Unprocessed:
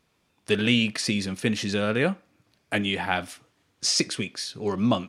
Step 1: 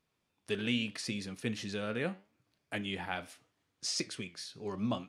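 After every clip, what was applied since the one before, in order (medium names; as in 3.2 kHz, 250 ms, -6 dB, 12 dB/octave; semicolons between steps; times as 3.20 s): flange 0.78 Hz, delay 6.1 ms, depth 7.4 ms, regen +82%; trim -7 dB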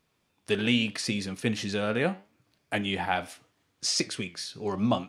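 dynamic bell 770 Hz, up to +5 dB, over -54 dBFS, Q 2.6; trim +7.5 dB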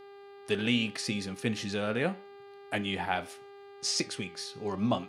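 mains buzz 400 Hz, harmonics 12, -47 dBFS -8 dB/octave; trim -3 dB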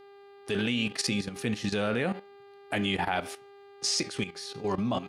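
level held to a coarse grid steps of 12 dB; trim +8 dB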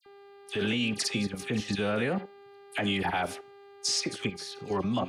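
phase dispersion lows, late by 62 ms, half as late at 2.3 kHz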